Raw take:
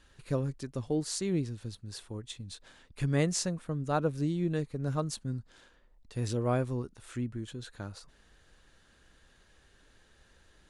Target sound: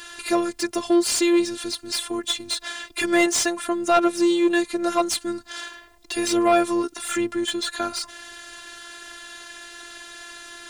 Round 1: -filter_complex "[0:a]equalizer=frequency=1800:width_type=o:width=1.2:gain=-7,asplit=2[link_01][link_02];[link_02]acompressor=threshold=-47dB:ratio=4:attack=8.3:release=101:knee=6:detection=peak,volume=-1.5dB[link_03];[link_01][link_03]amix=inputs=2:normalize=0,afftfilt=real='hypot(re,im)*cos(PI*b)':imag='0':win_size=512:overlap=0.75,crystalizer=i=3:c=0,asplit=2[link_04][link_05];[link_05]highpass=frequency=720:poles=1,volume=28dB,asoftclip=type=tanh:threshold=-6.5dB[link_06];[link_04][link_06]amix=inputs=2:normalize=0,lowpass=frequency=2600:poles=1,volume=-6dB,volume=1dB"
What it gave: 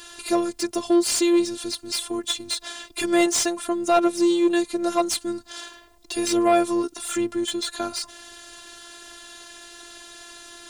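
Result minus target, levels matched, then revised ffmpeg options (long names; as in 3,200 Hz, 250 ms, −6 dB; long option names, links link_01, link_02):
2,000 Hz band −4.5 dB
-filter_complex "[0:a]asplit=2[link_01][link_02];[link_02]acompressor=threshold=-47dB:ratio=4:attack=8.3:release=101:knee=6:detection=peak,volume=-1.5dB[link_03];[link_01][link_03]amix=inputs=2:normalize=0,afftfilt=real='hypot(re,im)*cos(PI*b)':imag='0':win_size=512:overlap=0.75,crystalizer=i=3:c=0,asplit=2[link_04][link_05];[link_05]highpass=frequency=720:poles=1,volume=28dB,asoftclip=type=tanh:threshold=-6.5dB[link_06];[link_04][link_06]amix=inputs=2:normalize=0,lowpass=frequency=2600:poles=1,volume=-6dB,volume=1dB"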